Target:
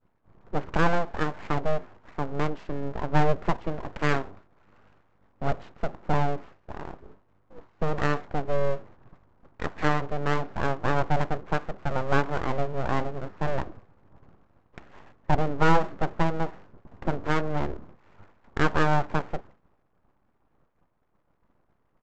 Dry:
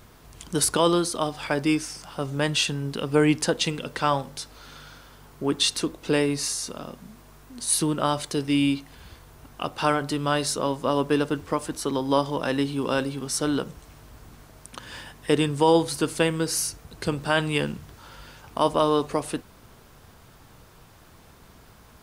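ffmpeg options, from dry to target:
-af "lowpass=f=1.2k:w=0.5412,lowpass=f=1.2k:w=1.3066,agate=range=-33dB:threshold=-40dB:ratio=3:detection=peak,aresample=16000,aeval=exprs='abs(val(0))':c=same,aresample=44100,volume=1.5dB"

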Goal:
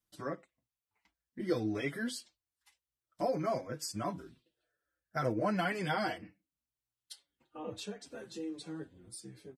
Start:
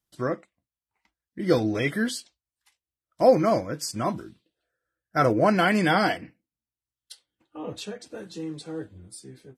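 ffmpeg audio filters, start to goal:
-filter_complex "[0:a]acompressor=threshold=-43dB:ratio=1.5,asplit=2[a][b];[b]adelay=6.2,afreqshift=-1.3[c];[a][c]amix=inputs=2:normalize=1"

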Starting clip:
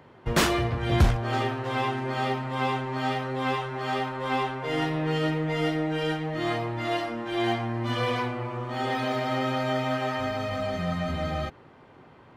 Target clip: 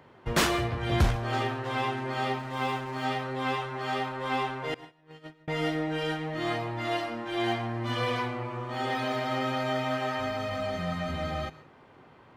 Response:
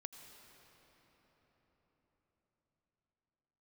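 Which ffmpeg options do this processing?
-filter_complex "[0:a]asettb=1/sr,asplit=3[a][b][c];[a]atrim=end=4.744[d];[b]atrim=start=4.74:end=5.48,asetpts=PTS-STARTPTS,afade=t=in:d=0.004:c=qsin,afade=t=out:st=0.736:d=0.004:c=qsin,agate=range=-37dB:threshold=-22dB:ratio=16:detection=peak[e];[c]atrim=start=5.476[f];[d][e]acrossfade=d=0.004:c1=hsin:c2=qsin[g];[g][f]acrossfade=d=0.004:c1=qsin:c2=hsin,asplit=2[h][i];[1:a]atrim=start_sample=2205,afade=t=out:st=0.22:d=0.01,atrim=end_sample=10143,lowshelf=f=480:g=-5.5[j];[i][j]afir=irnorm=-1:irlink=0,volume=8dB[k];[h][k]amix=inputs=2:normalize=0,asettb=1/sr,asplit=3[l][m][n];[l]atrim=end=2.394[o];[m]atrim=start=2.39:end=3.05,asetpts=PTS-STARTPTS,afade=t=in:d=0.004:c=qsin,afade=t=out:st=0.656:d=0.004:c=qsin,aeval=exprs='sgn(val(0))*max(abs(val(0))-0.0106,0)':c=same[p];[n]atrim=start=3.046[q];[o][p]acrossfade=d=0.004:c1=hsin:c2=qsin[r];[r][q]acrossfade=d=0.004:c1=qsin:c2=hsin,volume=-8.5dB"

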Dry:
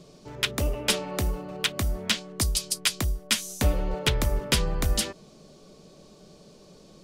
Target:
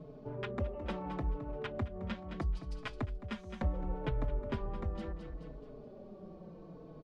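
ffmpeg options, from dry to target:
-filter_complex "[0:a]lowpass=1.1k,aecho=1:1:215|430|645|860:0.251|0.0879|0.0308|0.0108,acompressor=threshold=-43dB:ratio=2,asplit=2[a][b];[b]adelay=4.2,afreqshift=-0.72[c];[a][c]amix=inputs=2:normalize=1,volume=4.5dB"

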